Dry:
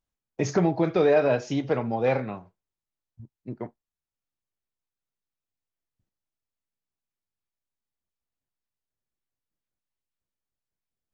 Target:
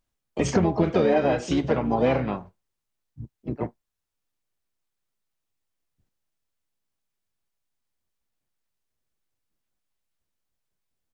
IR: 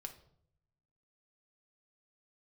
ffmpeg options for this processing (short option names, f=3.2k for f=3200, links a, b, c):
-filter_complex "[0:a]acompressor=threshold=-24dB:ratio=5,asplit=3[a][b][c];[b]asetrate=22050,aresample=44100,atempo=2,volume=-8dB[d];[c]asetrate=55563,aresample=44100,atempo=0.793701,volume=-8dB[e];[a][d][e]amix=inputs=3:normalize=0,volume=5dB"